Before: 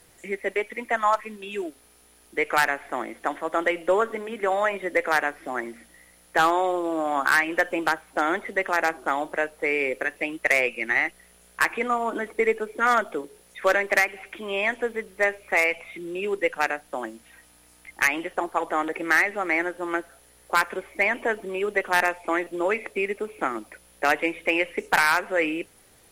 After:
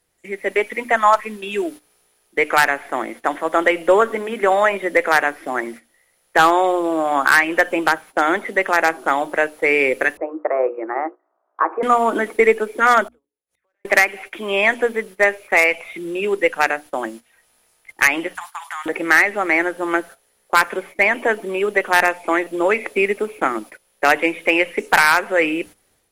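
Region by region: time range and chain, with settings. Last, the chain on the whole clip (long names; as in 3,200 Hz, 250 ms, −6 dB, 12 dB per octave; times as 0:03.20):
0:10.17–0:11.83: elliptic band-pass filter 330–1,200 Hz, stop band 60 dB + mains-hum notches 60/120/180/240/300/360/420/480/540 Hz
0:13.08–0:13.85: notch comb filter 200 Hz + downward compressor 16 to 1, threshold −30 dBFS + gate with flip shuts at −44 dBFS, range −31 dB
0:18.35–0:18.86: Butterworth high-pass 850 Hz 48 dB per octave + downward compressor 5 to 1, threshold −32 dBFS + tilt shelving filter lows −7.5 dB, about 1,200 Hz
whole clip: mains-hum notches 60/120/180/240/300 Hz; noise gate −42 dBFS, range −14 dB; automatic gain control gain up to 11.5 dB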